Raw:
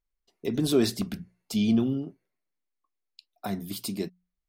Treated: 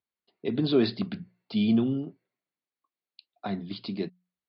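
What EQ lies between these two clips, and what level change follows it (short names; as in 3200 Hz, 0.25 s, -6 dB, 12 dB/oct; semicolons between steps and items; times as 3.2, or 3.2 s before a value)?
HPF 100 Hz 24 dB/oct; steep low-pass 4700 Hz 96 dB/oct; 0.0 dB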